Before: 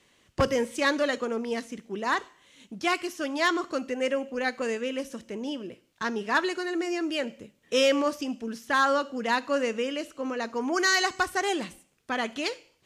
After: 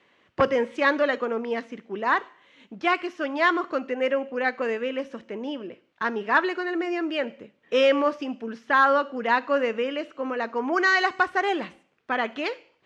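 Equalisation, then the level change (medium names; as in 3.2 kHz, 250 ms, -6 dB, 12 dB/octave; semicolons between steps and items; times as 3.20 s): high-pass 260 Hz 6 dB/octave; low-pass 2.3 kHz 12 dB/octave; bass shelf 410 Hz -3 dB; +5.5 dB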